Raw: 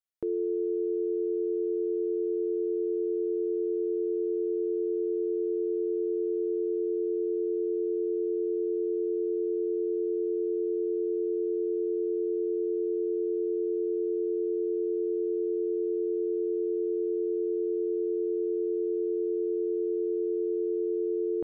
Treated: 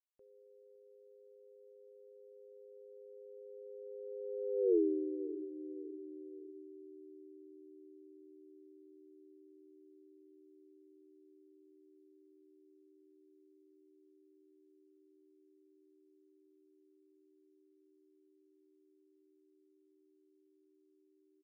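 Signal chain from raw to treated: Doppler pass-by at 4.74, 50 m/s, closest 4.6 m; feedback echo 0.562 s, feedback 38%, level -17.5 dB; gain +1.5 dB

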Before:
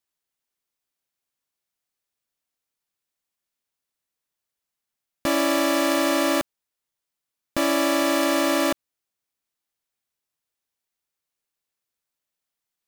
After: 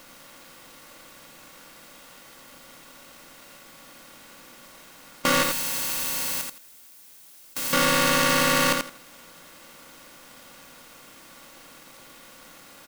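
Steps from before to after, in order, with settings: per-bin compression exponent 0.4; 5.43–7.73 pre-emphasis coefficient 0.9; on a send: feedback echo 84 ms, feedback 18%, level -5 dB; on the sum: polarity switched at an audio rate 840 Hz

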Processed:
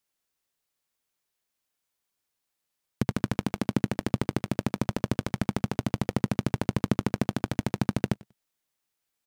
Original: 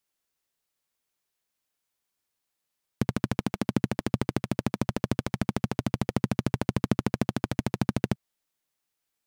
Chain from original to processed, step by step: feedback echo 95 ms, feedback 18%, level -22.5 dB

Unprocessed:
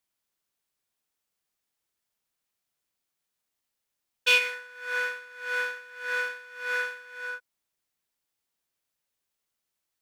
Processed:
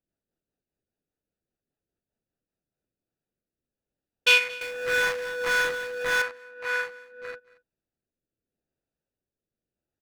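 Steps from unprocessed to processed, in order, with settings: Wiener smoothing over 41 samples; in parallel at +1.5 dB: compressor, threshold -40 dBFS, peak gain reduction 21 dB; on the sum: rotary speaker horn 5 Hz, later 0.85 Hz, at 2.45; echo 0.227 s -21.5 dB; 4.61–6.22 power-law curve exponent 0.5; gain +3.5 dB

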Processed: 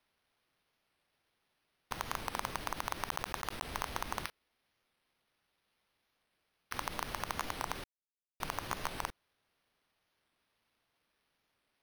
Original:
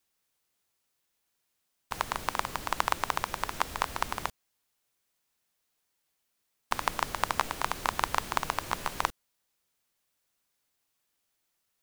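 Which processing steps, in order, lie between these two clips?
3.07–3.65 block floating point 3-bit; 4.25–6.74 HPF 1500 Hz 24 dB/oct; limiter -14.5 dBFS, peak gain reduction 9.5 dB; careless resampling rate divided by 6×, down none, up hold; 7.84–8.4 mute; record warp 45 rpm, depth 100 cents; gain -2 dB

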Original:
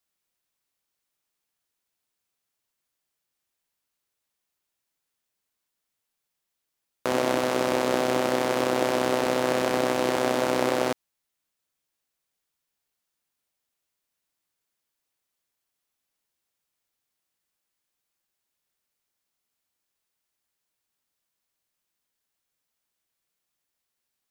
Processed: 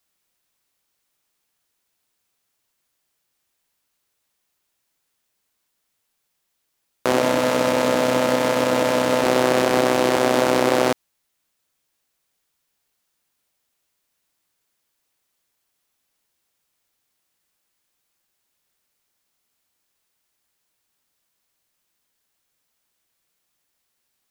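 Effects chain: limiter -12.5 dBFS, peak gain reduction 4 dB; 7.2–9.24 notch comb 370 Hz; gain +8 dB

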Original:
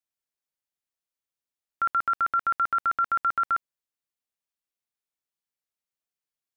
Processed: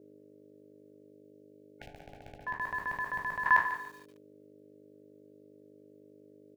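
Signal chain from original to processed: spectral trails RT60 0.33 s; HPF 170 Hz 12 dB/oct; 1.11–2.47 spectral delete 500–1800 Hz; 1.86–3.46 EQ curve 480 Hz 0 dB, 980 Hz -15 dB, 2000 Hz -12 dB; hum 50 Hz, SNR 18 dB; ring modulator 360 Hz; on a send: echo 0.179 s -17 dB; on the sum: lo-fi delay 0.144 s, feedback 35%, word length 9-bit, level -11.5 dB; gain +5 dB

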